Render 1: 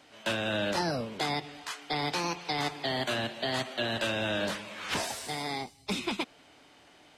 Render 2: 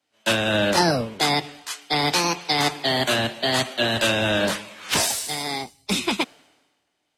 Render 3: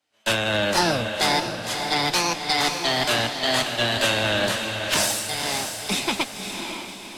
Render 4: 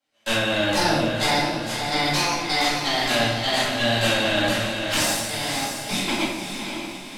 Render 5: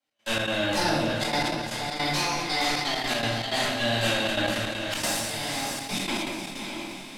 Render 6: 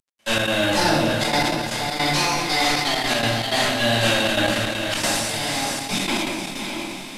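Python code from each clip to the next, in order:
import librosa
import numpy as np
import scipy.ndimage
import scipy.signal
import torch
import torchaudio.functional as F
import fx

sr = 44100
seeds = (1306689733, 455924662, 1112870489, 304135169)

y1 = fx.high_shelf(x, sr, hz=6600.0, db=9.0)
y1 = fx.band_widen(y1, sr, depth_pct=100)
y1 = y1 * 10.0 ** (9.0 / 20.0)
y2 = fx.peak_eq(y1, sr, hz=240.0, db=-3.5, octaves=2.1)
y2 = fx.tube_stage(y2, sr, drive_db=11.0, bias=0.55)
y2 = fx.echo_diffused(y2, sr, ms=556, feedback_pct=47, wet_db=-6)
y2 = y2 * 10.0 ** (2.0 / 20.0)
y3 = fx.room_shoebox(y2, sr, seeds[0], volume_m3=300.0, walls='mixed', distance_m=2.2)
y3 = y3 * 10.0 ** (-6.5 / 20.0)
y4 = fx.step_gate(y3, sr, bpm=158, pattern='x.xx.xxxxxxxx.x.', floor_db=-12.0, edge_ms=4.5)
y4 = y4 + 10.0 ** (-16.0 / 20.0) * np.pad(y4, (int(244 * sr / 1000.0), 0))[:len(y4)]
y4 = fx.sustainer(y4, sr, db_per_s=29.0)
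y4 = y4 * 10.0 ** (-4.5 / 20.0)
y5 = fx.cvsd(y4, sr, bps=64000)
y5 = y5 * 10.0 ** (6.0 / 20.0)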